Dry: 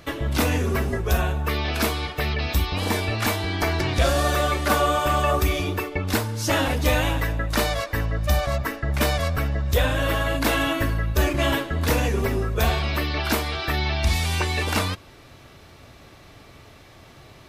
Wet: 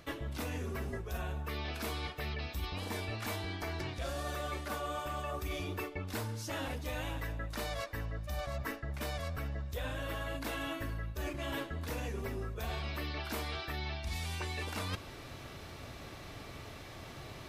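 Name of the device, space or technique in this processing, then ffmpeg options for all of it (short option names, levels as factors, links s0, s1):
compression on the reversed sound: -af "areverse,acompressor=threshold=0.0178:ratio=16,areverse"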